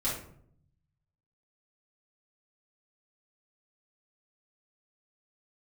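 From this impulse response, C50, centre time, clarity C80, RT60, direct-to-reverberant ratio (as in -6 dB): 3.5 dB, 40 ms, 8.5 dB, 0.65 s, -8.5 dB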